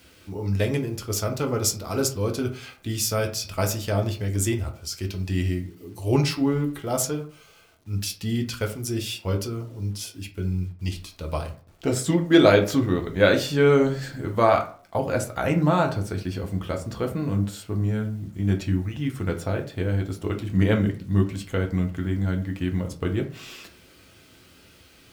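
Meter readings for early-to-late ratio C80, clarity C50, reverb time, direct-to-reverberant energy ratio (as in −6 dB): 16.5 dB, 12.0 dB, 0.45 s, 2.5 dB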